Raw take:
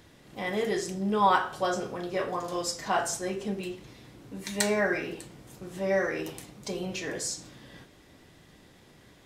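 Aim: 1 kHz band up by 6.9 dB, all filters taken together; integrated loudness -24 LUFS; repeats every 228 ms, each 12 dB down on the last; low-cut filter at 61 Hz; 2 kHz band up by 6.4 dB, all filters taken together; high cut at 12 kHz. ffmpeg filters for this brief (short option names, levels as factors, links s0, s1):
-af "highpass=61,lowpass=12000,equalizer=f=1000:t=o:g=7,equalizer=f=2000:t=o:g=5.5,aecho=1:1:228|456|684:0.251|0.0628|0.0157,volume=1.12"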